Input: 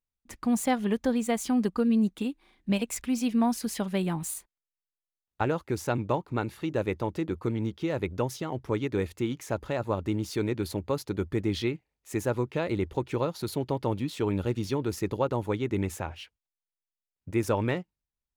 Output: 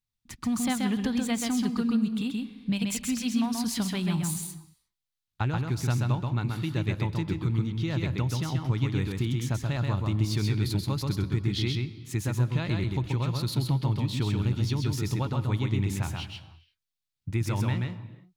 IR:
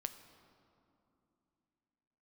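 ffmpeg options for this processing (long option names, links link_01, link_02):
-filter_complex "[0:a]equalizer=frequency=125:width_type=o:width=1:gain=11,equalizer=frequency=500:width_type=o:width=1:gain=-11,equalizer=frequency=4000:width_type=o:width=1:gain=7,acompressor=threshold=-24dB:ratio=6,asplit=2[link_01][link_02];[1:a]atrim=start_sample=2205,afade=type=out:start_time=0.42:duration=0.01,atrim=end_sample=18963,adelay=131[link_03];[link_02][link_03]afir=irnorm=-1:irlink=0,volume=-1dB[link_04];[link_01][link_04]amix=inputs=2:normalize=0"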